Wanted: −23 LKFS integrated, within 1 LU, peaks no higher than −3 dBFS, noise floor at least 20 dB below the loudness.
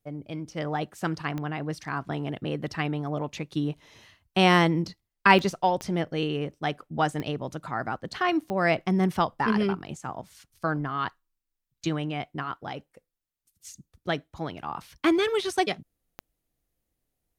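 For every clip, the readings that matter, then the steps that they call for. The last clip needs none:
number of clicks 6; integrated loudness −27.5 LKFS; sample peak −4.0 dBFS; target loudness −23.0 LKFS
→ click removal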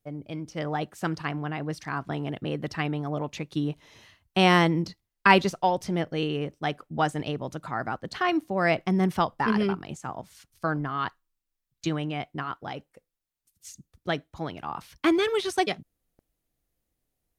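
number of clicks 0; integrated loudness −27.5 LKFS; sample peak −4.0 dBFS; target loudness −23.0 LKFS
→ level +4.5 dB
brickwall limiter −3 dBFS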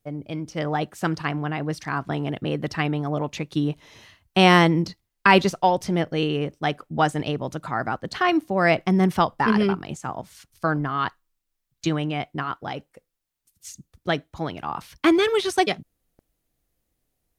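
integrated loudness −23.5 LKFS; sample peak −3.0 dBFS; background noise floor −78 dBFS

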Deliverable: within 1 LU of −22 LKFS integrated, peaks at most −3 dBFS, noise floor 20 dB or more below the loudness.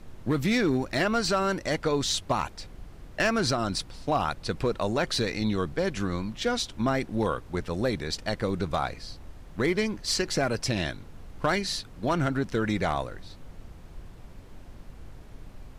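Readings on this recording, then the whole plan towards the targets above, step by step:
share of clipped samples 0.3%; peaks flattened at −17.0 dBFS; background noise floor −47 dBFS; target noise floor −48 dBFS; integrated loudness −28.0 LKFS; sample peak −17.0 dBFS; target loudness −22.0 LKFS
→ clipped peaks rebuilt −17 dBFS
noise reduction from a noise print 6 dB
level +6 dB

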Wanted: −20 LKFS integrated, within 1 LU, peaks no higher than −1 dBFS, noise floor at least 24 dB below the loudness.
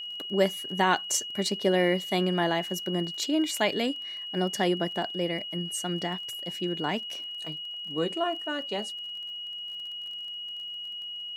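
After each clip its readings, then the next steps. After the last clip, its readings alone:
crackle rate 32 per second; interfering tone 2,900 Hz; level of the tone −35 dBFS; integrated loudness −29.5 LKFS; sample peak −9.5 dBFS; target loudness −20.0 LKFS
→ click removal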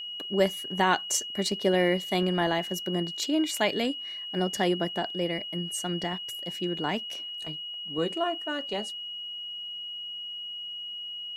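crackle rate 0.35 per second; interfering tone 2,900 Hz; level of the tone −35 dBFS
→ notch filter 2,900 Hz, Q 30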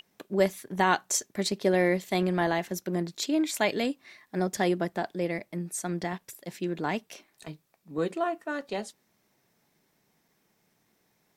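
interfering tone none found; integrated loudness −29.5 LKFS; sample peak −9.5 dBFS; target loudness −20.0 LKFS
→ level +9.5 dB
brickwall limiter −1 dBFS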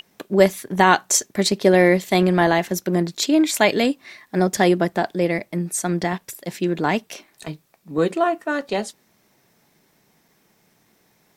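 integrated loudness −20.0 LKFS; sample peak −1.0 dBFS; background noise floor −62 dBFS

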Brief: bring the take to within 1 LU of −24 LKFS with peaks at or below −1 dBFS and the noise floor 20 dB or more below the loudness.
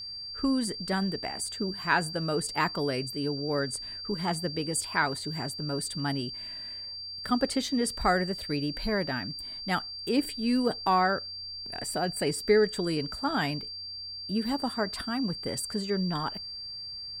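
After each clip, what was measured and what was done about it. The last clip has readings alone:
interfering tone 4,700 Hz; level of the tone −37 dBFS; integrated loudness −30.0 LKFS; sample peak −10.0 dBFS; target loudness −24.0 LKFS
→ notch filter 4,700 Hz, Q 30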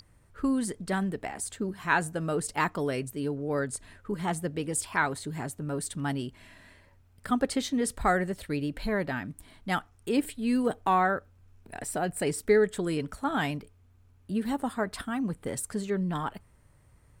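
interfering tone none found; integrated loudness −30.5 LKFS; sample peak −10.0 dBFS; target loudness −24.0 LKFS
→ level +6.5 dB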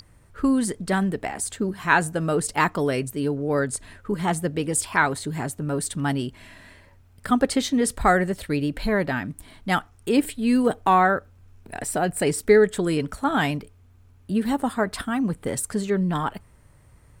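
integrated loudness −24.0 LKFS; sample peak −3.5 dBFS; background noise floor −54 dBFS

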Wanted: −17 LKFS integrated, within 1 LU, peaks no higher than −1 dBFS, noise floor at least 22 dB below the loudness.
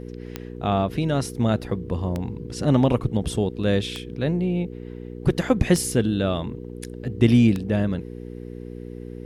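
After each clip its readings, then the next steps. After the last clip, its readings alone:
number of clicks 5; mains hum 60 Hz; hum harmonics up to 480 Hz; level of the hum −35 dBFS; integrated loudness −23.5 LKFS; sample peak −4.0 dBFS; target loudness −17.0 LKFS
→ click removal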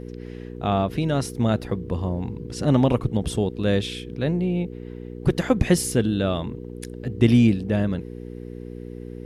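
number of clicks 0; mains hum 60 Hz; hum harmonics up to 480 Hz; level of the hum −35 dBFS
→ hum removal 60 Hz, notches 8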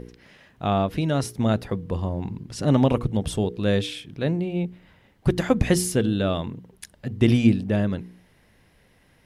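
mains hum none found; integrated loudness −24.0 LKFS; sample peak −4.5 dBFS; target loudness −17.0 LKFS
→ level +7 dB
brickwall limiter −1 dBFS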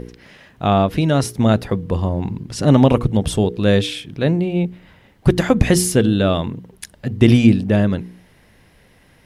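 integrated loudness −17.5 LKFS; sample peak −1.0 dBFS; background noise floor −53 dBFS

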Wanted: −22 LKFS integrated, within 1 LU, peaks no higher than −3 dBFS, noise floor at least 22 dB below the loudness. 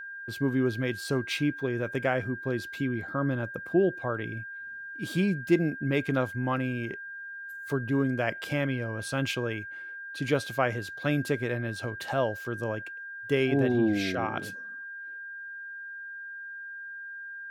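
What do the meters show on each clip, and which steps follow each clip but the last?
interfering tone 1,600 Hz; level of the tone −38 dBFS; integrated loudness −30.5 LKFS; sample peak −11.0 dBFS; target loudness −22.0 LKFS
→ notch filter 1,600 Hz, Q 30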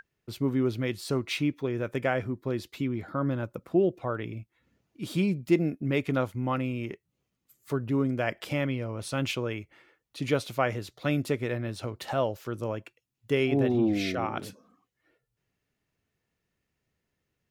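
interfering tone none found; integrated loudness −30.0 LKFS; sample peak −11.5 dBFS; target loudness −22.0 LKFS
→ level +8 dB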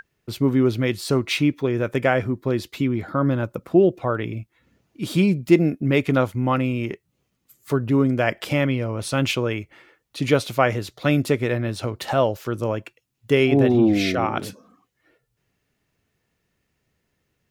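integrated loudness −22.0 LKFS; sample peak −3.5 dBFS; background noise floor −74 dBFS

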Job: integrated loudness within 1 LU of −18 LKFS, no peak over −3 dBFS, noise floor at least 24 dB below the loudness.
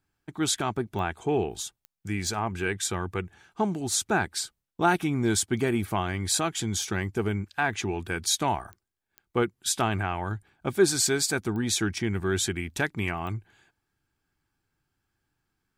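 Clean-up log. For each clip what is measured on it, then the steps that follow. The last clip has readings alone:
number of clicks 8; integrated loudness −28.0 LKFS; sample peak −9.5 dBFS; target loudness −18.0 LKFS
→ click removal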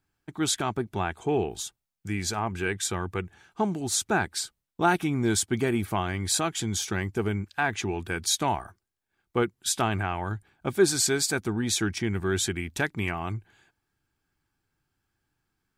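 number of clicks 0; integrated loudness −28.0 LKFS; sample peak −9.5 dBFS; target loudness −18.0 LKFS
→ level +10 dB
brickwall limiter −3 dBFS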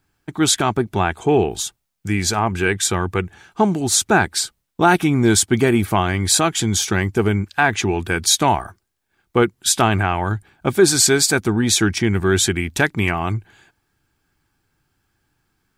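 integrated loudness −18.0 LKFS; sample peak −3.0 dBFS; background noise floor −72 dBFS

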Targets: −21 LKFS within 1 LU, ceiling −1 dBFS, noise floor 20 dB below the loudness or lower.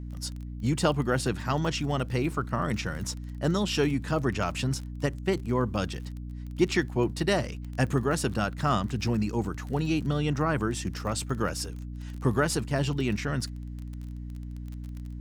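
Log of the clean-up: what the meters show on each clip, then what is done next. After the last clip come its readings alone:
crackle rate 28 per second; mains hum 60 Hz; hum harmonics up to 300 Hz; level of the hum −35 dBFS; integrated loudness −29.0 LKFS; sample peak −10.5 dBFS; target loudness −21.0 LKFS
→ click removal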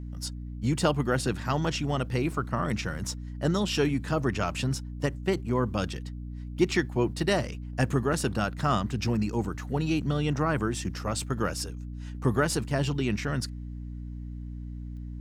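crackle rate 0.066 per second; mains hum 60 Hz; hum harmonics up to 300 Hz; level of the hum −35 dBFS
→ mains-hum notches 60/120/180/240/300 Hz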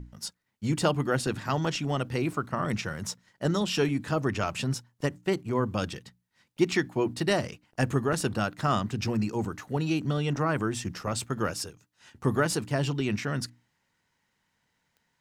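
mains hum none found; integrated loudness −29.5 LKFS; sample peak −10.5 dBFS; target loudness −21.0 LKFS
→ level +8.5 dB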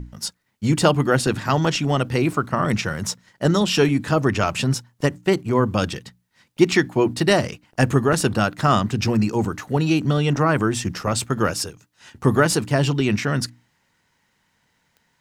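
integrated loudness −21.0 LKFS; sample peak −2.0 dBFS; background noise floor −68 dBFS

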